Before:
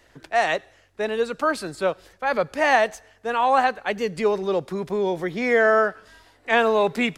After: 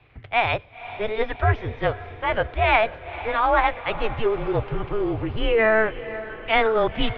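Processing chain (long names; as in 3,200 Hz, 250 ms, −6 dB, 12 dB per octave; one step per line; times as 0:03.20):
formants moved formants +6 semitones
single-sideband voice off tune −220 Hz 190–3,500 Hz
low shelf with overshoot 150 Hz +7.5 dB, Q 3
on a send: feedback delay with all-pass diffusion 503 ms, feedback 57%, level −14.5 dB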